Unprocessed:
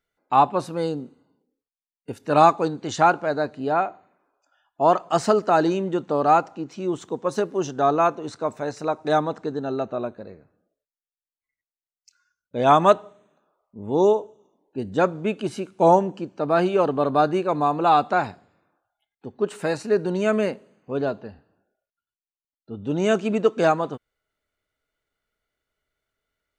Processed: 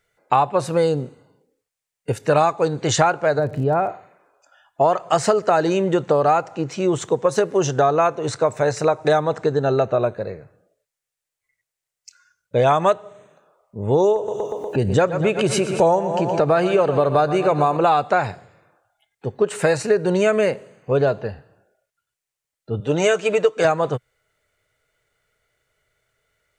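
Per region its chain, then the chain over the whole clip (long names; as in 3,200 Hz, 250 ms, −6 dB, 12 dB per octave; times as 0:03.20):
0:03.38–0:03.88: spectral tilt −3.5 dB per octave + downward compressor 2 to 1, threshold −31 dBFS + surface crackle 79 per second −45 dBFS
0:14.16–0:17.77: repeating echo 120 ms, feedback 57%, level −15 dB + upward compression, threshold −20 dBFS
0:22.80–0:23.65: high-pass filter 430 Hz 6 dB per octave + comb filter 6.6 ms, depth 48%
whole clip: octave-band graphic EQ 125/250/500/2,000/8,000 Hz +10/−8/+7/+6/+7 dB; downward compressor 6 to 1, threshold −21 dBFS; level +7 dB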